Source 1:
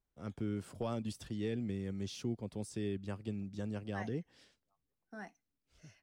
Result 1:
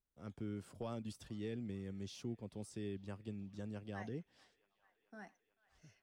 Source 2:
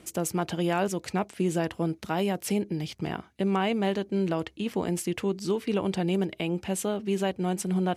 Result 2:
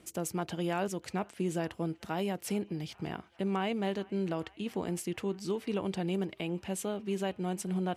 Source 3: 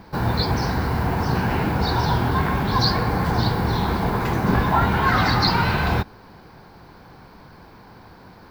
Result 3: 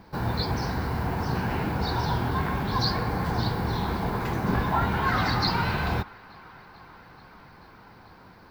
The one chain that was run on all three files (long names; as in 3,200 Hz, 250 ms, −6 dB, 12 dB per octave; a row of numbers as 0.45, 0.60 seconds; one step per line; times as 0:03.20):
delay with a band-pass on its return 438 ms, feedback 79%, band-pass 1,600 Hz, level −22.5 dB
level −6 dB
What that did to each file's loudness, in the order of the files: −6.0, −6.0, −6.0 LU